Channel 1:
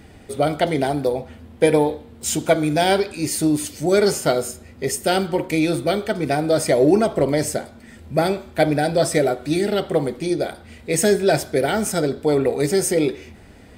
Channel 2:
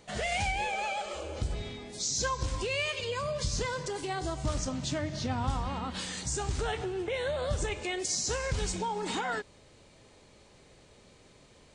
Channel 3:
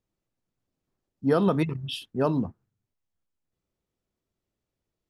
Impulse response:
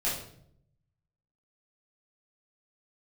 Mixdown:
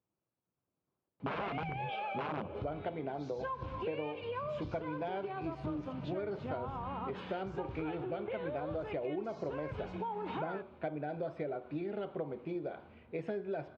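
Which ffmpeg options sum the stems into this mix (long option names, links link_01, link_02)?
-filter_complex "[0:a]adelay=2250,volume=-12dB[link_01];[1:a]adelay=1200,volume=-2dB[link_02];[2:a]aeval=exprs='(mod(10.6*val(0)+1,2)-1)/10.6':channel_layout=same,volume=-2.5dB[link_03];[link_01][link_02][link_03]amix=inputs=3:normalize=0,highpass=110,equalizer=frequency=240:width_type=q:width=4:gain=-4,equalizer=frequency=1000:width_type=q:width=4:gain=3,equalizer=frequency=1900:width_type=q:width=4:gain=-9,lowpass=frequency=2500:width=0.5412,lowpass=frequency=2500:width=1.3066,acompressor=threshold=-35dB:ratio=6"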